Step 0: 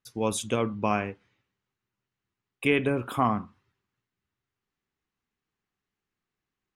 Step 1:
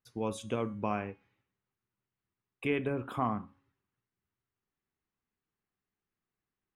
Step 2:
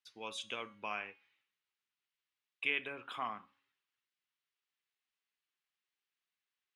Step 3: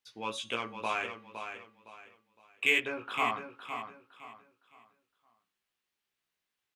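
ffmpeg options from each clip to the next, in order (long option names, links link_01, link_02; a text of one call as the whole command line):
ffmpeg -i in.wav -filter_complex "[0:a]asplit=2[link_01][link_02];[link_02]acompressor=threshold=-32dB:ratio=6,volume=-3dB[link_03];[link_01][link_03]amix=inputs=2:normalize=0,highshelf=frequency=3700:gain=-11.5,bandreject=frequency=276:width_type=h:width=4,bandreject=frequency=552:width_type=h:width=4,bandreject=frequency=828:width_type=h:width=4,bandreject=frequency=1104:width_type=h:width=4,bandreject=frequency=1380:width_type=h:width=4,bandreject=frequency=1656:width_type=h:width=4,bandreject=frequency=1932:width_type=h:width=4,bandreject=frequency=2208:width_type=h:width=4,bandreject=frequency=2484:width_type=h:width=4,bandreject=frequency=2760:width_type=h:width=4,bandreject=frequency=3036:width_type=h:width=4,bandreject=frequency=3312:width_type=h:width=4,bandreject=frequency=3588:width_type=h:width=4,bandreject=frequency=3864:width_type=h:width=4,bandreject=frequency=4140:width_type=h:width=4,bandreject=frequency=4416:width_type=h:width=4,bandreject=frequency=4692:width_type=h:width=4,bandreject=frequency=4968:width_type=h:width=4,bandreject=frequency=5244:width_type=h:width=4,bandreject=frequency=5520:width_type=h:width=4,bandreject=frequency=5796:width_type=h:width=4,bandreject=frequency=6072:width_type=h:width=4,bandreject=frequency=6348:width_type=h:width=4,bandreject=frequency=6624:width_type=h:width=4,bandreject=frequency=6900:width_type=h:width=4,bandreject=frequency=7176:width_type=h:width=4,bandreject=frequency=7452:width_type=h:width=4,bandreject=frequency=7728:width_type=h:width=4,bandreject=frequency=8004:width_type=h:width=4,bandreject=frequency=8280:width_type=h:width=4,bandreject=frequency=8556:width_type=h:width=4,bandreject=frequency=8832:width_type=h:width=4,bandreject=frequency=9108:width_type=h:width=4,bandreject=frequency=9384:width_type=h:width=4,bandreject=frequency=9660:width_type=h:width=4,bandreject=frequency=9936:width_type=h:width=4,bandreject=frequency=10212:width_type=h:width=4,bandreject=frequency=10488:width_type=h:width=4,bandreject=frequency=10764:width_type=h:width=4,volume=-8dB" out.wav
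ffmpeg -i in.wav -af "bandpass=frequency=3200:width_type=q:width=1.4:csg=0,volume=6.5dB" out.wav
ffmpeg -i in.wav -filter_complex "[0:a]asplit=2[link_01][link_02];[link_02]adynamicsmooth=sensitivity=7:basefreq=1200,volume=-3dB[link_03];[link_01][link_03]amix=inputs=2:normalize=0,flanger=delay=17:depth=2.2:speed=2.1,aecho=1:1:512|1024|1536|2048:0.376|0.113|0.0338|0.0101,volume=7.5dB" out.wav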